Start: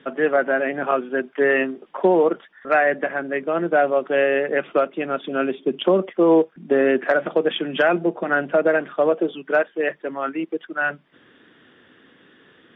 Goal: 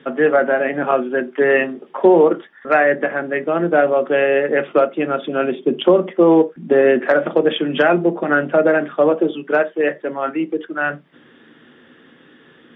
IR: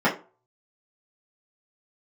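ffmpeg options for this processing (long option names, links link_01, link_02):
-filter_complex "[0:a]asplit=2[link_01][link_02];[1:a]atrim=start_sample=2205,afade=type=out:start_time=0.15:duration=0.01,atrim=end_sample=7056,lowshelf=frequency=380:gain=9.5[link_03];[link_02][link_03]afir=irnorm=-1:irlink=0,volume=-28dB[link_04];[link_01][link_04]amix=inputs=2:normalize=0,volume=2.5dB"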